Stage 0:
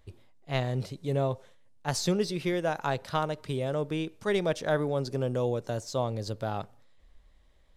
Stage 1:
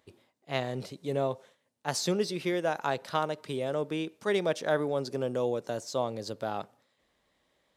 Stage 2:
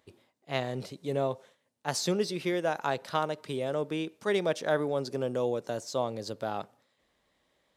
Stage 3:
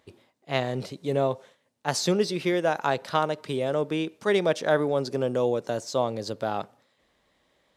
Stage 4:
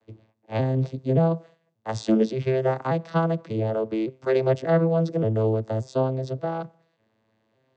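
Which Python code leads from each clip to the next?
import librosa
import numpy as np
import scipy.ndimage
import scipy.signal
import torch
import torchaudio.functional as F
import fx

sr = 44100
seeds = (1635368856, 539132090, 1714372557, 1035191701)

y1 = scipy.signal.sosfilt(scipy.signal.butter(2, 200.0, 'highpass', fs=sr, output='sos'), x)
y2 = y1
y3 = fx.high_shelf(y2, sr, hz=9500.0, db=-5.5)
y3 = y3 * librosa.db_to_amplitude(5.0)
y4 = fx.vocoder_arp(y3, sr, chord='minor triad', root=45, every_ms=580)
y4 = y4 * librosa.db_to_amplitude(3.5)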